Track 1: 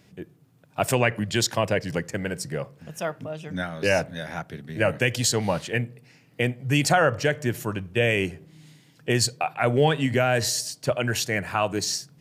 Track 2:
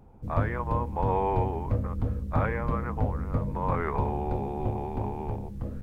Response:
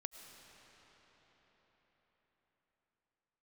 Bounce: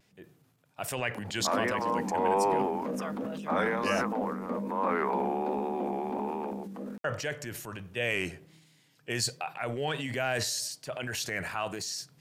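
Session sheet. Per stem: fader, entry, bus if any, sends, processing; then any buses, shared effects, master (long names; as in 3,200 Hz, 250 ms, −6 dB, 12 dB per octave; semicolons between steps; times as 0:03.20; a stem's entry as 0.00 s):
−5.5 dB, 0.00 s, muted 0:04.04–0:07.04, no send, shaped tremolo triangle 0.9 Hz, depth 35%; low-shelf EQ 460 Hz −8.5 dB
+1.0 dB, 1.15 s, no send, Butterworth high-pass 190 Hz 96 dB per octave; upward compression, threshold −48 dBFS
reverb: not used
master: transient designer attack −2 dB, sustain +8 dB; pitch vibrato 1.3 Hz 50 cents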